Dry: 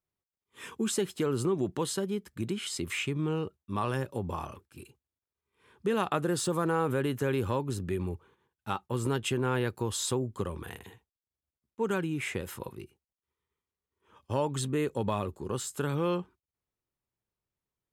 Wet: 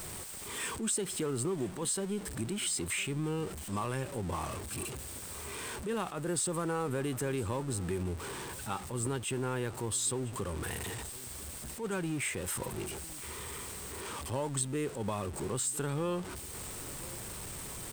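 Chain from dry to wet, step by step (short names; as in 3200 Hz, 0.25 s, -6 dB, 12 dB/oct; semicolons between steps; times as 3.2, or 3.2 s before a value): zero-crossing step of -36 dBFS; bell 8400 Hz +14.5 dB 0.22 oct; compressor 2.5:1, threshold -33 dBFS, peak gain reduction 9 dB; echo 1.007 s -20 dB; attack slew limiter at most 140 dB/s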